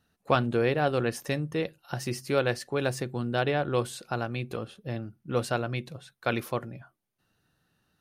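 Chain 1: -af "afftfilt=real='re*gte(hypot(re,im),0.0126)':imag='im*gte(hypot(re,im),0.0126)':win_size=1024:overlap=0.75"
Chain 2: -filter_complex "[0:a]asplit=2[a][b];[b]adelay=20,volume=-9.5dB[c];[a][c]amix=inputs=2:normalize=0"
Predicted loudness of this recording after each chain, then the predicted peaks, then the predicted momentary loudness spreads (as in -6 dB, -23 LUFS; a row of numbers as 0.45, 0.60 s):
-30.0, -29.5 LUFS; -8.0, -8.0 dBFS; 11, 12 LU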